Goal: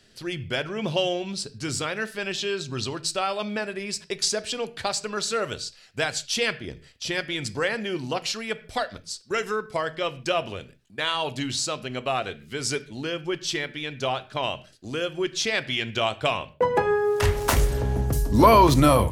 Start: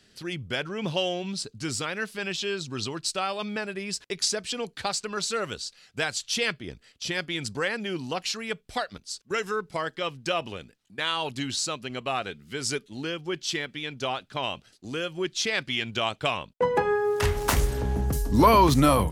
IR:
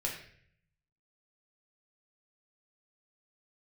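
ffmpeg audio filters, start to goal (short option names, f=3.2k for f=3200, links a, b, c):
-filter_complex "[0:a]equalizer=f=640:t=o:w=0.44:g=3.5,asplit=2[a][b];[1:a]atrim=start_sample=2205,afade=t=out:st=0.21:d=0.01,atrim=end_sample=9702,lowshelf=f=220:g=7.5[c];[b][c]afir=irnorm=-1:irlink=0,volume=-13.5dB[d];[a][d]amix=inputs=2:normalize=0"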